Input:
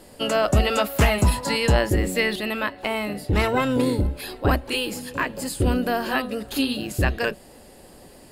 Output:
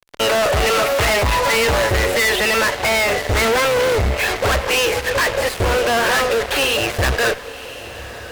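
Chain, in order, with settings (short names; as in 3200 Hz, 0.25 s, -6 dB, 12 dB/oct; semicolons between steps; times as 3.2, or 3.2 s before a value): EQ curve 110 Hz 0 dB, 220 Hz -24 dB, 450 Hz +7 dB, 800 Hz +6 dB, 2200 Hz +11 dB, 6500 Hz -14 dB; fuzz box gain 36 dB, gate -36 dBFS; on a send: diffused feedback echo 1.079 s, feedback 46%, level -15 dB; on the sum: gain -2 dB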